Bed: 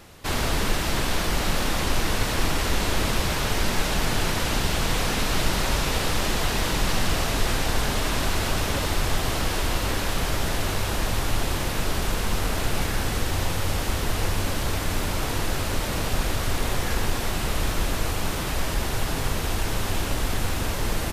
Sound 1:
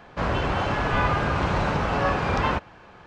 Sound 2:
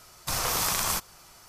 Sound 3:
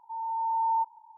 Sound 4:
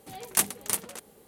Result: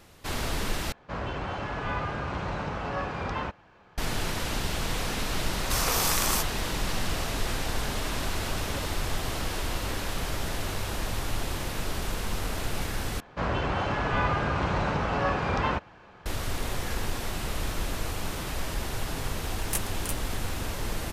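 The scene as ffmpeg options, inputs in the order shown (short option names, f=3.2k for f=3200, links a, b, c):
-filter_complex "[1:a]asplit=2[a][b];[0:a]volume=-6dB,asplit=3[c][d][e];[c]atrim=end=0.924[f];[a]atrim=end=3.06,asetpts=PTS-STARTPTS,volume=-8.5dB[g];[d]atrim=start=3.976:end=13.204[h];[b]atrim=end=3.06,asetpts=PTS-STARTPTS,volume=-3.5dB[i];[e]atrim=start=16.256[j];[2:a]atrim=end=1.48,asetpts=PTS-STARTPTS,afade=t=in:d=0.004:c=hsin,afade=t=out:st=1.476:d=0.004:c=hsin,adelay=5430[k];[4:a]atrim=end=1.27,asetpts=PTS-STARTPTS,volume=-8dB,afade=t=in:d=0.004:c=hsin,afade=t=out:st=1.266:d=0.004:c=hsin,adelay=19360[l];[f][g]acrossfade=d=0.004:c1=hsin:c2=hsin[m];[m][h]acrossfade=d=0.004:c1=hsin:c2=hsin[n];[n][i]acrossfade=d=0.004:c1=hsin:c2=hsin[o];[o][j]acrossfade=d=0.004:c1=hsin:c2=hsin[p];[p][k][l]amix=inputs=3:normalize=0"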